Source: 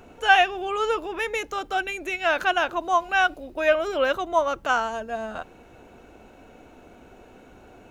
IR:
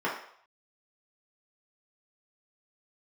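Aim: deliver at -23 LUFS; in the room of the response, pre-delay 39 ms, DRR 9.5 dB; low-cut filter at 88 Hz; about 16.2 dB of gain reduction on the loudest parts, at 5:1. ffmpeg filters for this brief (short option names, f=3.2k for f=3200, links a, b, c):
-filter_complex "[0:a]highpass=88,acompressor=threshold=-30dB:ratio=5,asplit=2[a][b];[1:a]atrim=start_sample=2205,adelay=39[c];[b][c]afir=irnorm=-1:irlink=0,volume=-20.5dB[d];[a][d]amix=inputs=2:normalize=0,volume=10dB"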